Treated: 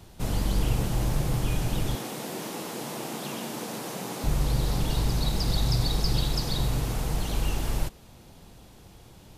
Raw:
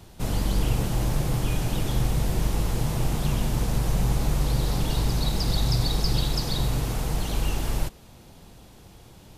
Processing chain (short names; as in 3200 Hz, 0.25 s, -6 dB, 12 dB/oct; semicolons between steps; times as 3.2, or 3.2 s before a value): 1.95–4.24 HPF 220 Hz 24 dB/oct; gain -1.5 dB